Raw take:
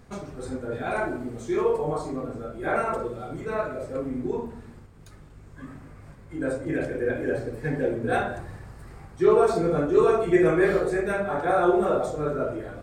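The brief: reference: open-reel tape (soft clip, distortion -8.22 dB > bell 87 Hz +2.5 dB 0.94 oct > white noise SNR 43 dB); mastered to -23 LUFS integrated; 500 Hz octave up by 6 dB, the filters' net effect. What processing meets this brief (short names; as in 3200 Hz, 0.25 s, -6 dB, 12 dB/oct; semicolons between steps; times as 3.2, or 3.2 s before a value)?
bell 500 Hz +7.5 dB; soft clip -17.5 dBFS; bell 87 Hz +2.5 dB 0.94 oct; white noise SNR 43 dB; gain +2 dB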